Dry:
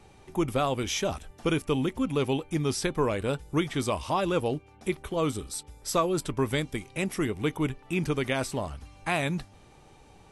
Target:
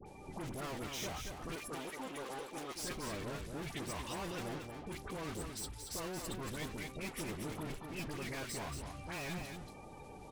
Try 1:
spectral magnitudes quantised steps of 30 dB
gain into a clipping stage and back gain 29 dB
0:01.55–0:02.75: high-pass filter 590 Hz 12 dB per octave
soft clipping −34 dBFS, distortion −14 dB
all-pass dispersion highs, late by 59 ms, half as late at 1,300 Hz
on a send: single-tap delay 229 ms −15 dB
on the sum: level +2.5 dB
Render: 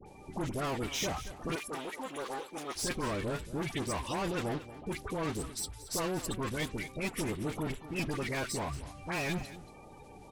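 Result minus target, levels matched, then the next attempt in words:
echo-to-direct −9 dB; soft clipping: distortion −8 dB
spectral magnitudes quantised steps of 30 dB
gain into a clipping stage and back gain 29 dB
0:01.55–0:02.75: high-pass filter 590 Hz 12 dB per octave
soft clipping −44 dBFS, distortion −6 dB
all-pass dispersion highs, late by 59 ms, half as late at 1,300 Hz
on a send: single-tap delay 229 ms −6 dB
on the sum: level +2.5 dB

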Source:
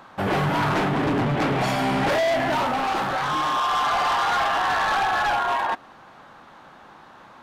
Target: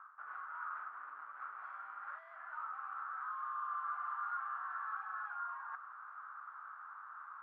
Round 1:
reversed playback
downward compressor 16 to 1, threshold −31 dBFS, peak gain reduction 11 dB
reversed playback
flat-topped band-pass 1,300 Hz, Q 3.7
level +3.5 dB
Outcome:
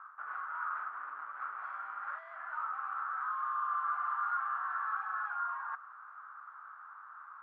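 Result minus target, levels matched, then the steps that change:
downward compressor: peak gain reduction −6 dB
change: downward compressor 16 to 1, threshold −37.5 dBFS, peak gain reduction 17 dB

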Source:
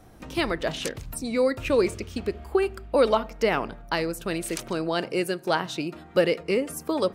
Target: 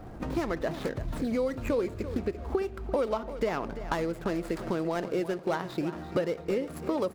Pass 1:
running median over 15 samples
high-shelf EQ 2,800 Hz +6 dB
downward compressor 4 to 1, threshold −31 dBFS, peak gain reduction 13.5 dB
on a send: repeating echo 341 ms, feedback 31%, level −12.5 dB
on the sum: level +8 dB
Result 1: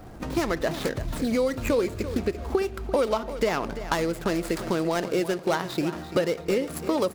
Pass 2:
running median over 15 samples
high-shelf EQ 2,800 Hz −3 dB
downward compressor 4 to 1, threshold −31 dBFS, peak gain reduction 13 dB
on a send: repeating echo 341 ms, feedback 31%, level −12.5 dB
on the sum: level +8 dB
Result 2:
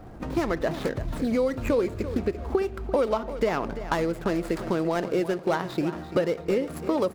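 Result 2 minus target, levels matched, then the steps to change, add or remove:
downward compressor: peak gain reduction −4.5 dB
change: downward compressor 4 to 1, threshold −37 dBFS, peak gain reduction 17.5 dB

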